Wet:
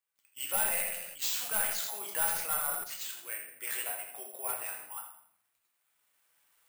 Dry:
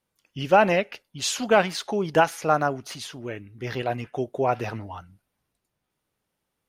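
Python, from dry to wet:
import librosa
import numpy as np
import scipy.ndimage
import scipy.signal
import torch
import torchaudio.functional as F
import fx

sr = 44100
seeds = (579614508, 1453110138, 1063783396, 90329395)

y = fx.recorder_agc(x, sr, target_db=-13.0, rise_db_per_s=9.0, max_gain_db=30)
y = scipy.signal.sosfilt(scipy.signal.butter(2, 1400.0, 'highpass', fs=sr, output='sos'), y)
y = fx.high_shelf(y, sr, hz=4400.0, db=-10.5)
y = np.clip(10.0 ** (26.5 / 20.0) * y, -1.0, 1.0) / 10.0 ** (26.5 / 20.0)
y = fx.echo_feedback(y, sr, ms=83, feedback_pct=34, wet_db=-9.0)
y = fx.room_shoebox(y, sr, seeds[0], volume_m3=120.0, walls='mixed', distance_m=0.73)
y = (np.kron(y[::4], np.eye(4)[0]) * 4)[:len(y)]
y = fx.sustainer(y, sr, db_per_s=47.0, at=(0.6, 2.84))
y = y * 10.0 ** (-8.0 / 20.0)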